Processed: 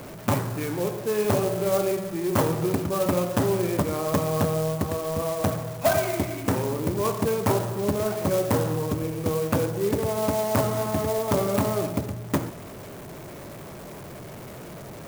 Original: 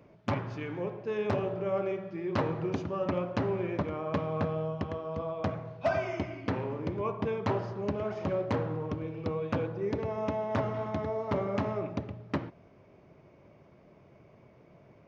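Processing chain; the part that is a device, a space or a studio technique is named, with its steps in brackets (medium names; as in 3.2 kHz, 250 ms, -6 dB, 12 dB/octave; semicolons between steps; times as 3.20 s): early CD player with a faulty converter (jump at every zero crossing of -42.5 dBFS; sampling jitter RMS 0.062 ms); trim +6.5 dB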